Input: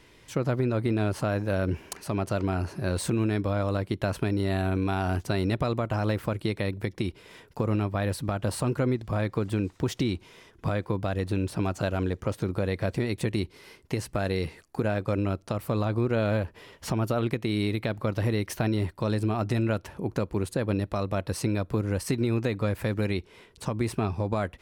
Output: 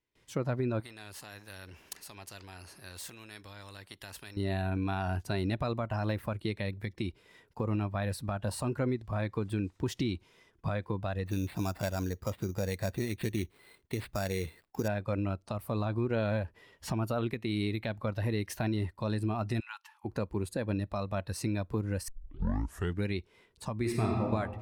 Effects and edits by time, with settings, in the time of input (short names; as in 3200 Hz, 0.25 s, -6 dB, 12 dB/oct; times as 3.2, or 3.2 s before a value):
0.8–4.37 spectral compressor 2:1
11.26–14.88 sample-rate reducer 6200 Hz
19.6–20.05 rippled Chebyshev high-pass 810 Hz, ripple 3 dB
22.08 tape start 0.97 s
23.78–24.24 reverb throw, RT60 2.2 s, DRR -1 dB
whole clip: gate with hold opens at -45 dBFS; spectral noise reduction 7 dB; gain -4.5 dB